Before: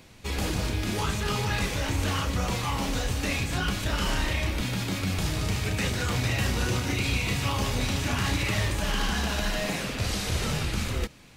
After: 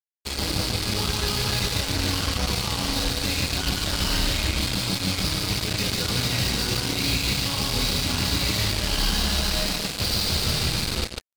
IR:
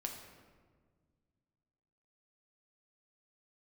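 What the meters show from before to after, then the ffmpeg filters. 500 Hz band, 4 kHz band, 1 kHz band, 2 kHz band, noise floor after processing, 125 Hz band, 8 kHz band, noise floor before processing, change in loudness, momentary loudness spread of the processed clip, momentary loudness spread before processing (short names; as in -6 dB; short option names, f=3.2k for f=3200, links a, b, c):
+1.0 dB, +9.0 dB, 0.0 dB, +1.0 dB, -33 dBFS, +0.5 dB, +6.5 dB, -34 dBFS, +4.5 dB, 2 LU, 3 LU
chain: -filter_complex "[0:a]lowpass=f=4.6k:t=q:w=4.5,aecho=1:1:144|288|432|576:0.631|0.196|0.0606|0.0188,acrossover=split=160|570|3400[a][b][c][d];[c]asoftclip=type=hard:threshold=-33dB[e];[a][b][e][d]amix=inputs=4:normalize=0,acrusher=bits=3:mix=0:aa=0.5,bandreject=f=1.8k:w=21"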